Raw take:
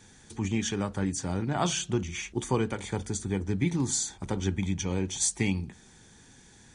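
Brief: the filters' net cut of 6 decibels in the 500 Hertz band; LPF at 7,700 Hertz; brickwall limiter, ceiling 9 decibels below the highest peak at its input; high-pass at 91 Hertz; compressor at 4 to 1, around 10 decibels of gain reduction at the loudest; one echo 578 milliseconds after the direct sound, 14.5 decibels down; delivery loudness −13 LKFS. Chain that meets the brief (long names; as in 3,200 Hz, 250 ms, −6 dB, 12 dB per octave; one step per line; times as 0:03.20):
high-pass filter 91 Hz
low-pass filter 7,700 Hz
parametric band 500 Hz −8.5 dB
downward compressor 4 to 1, threshold −37 dBFS
brickwall limiter −33 dBFS
single-tap delay 578 ms −14.5 dB
level +29.5 dB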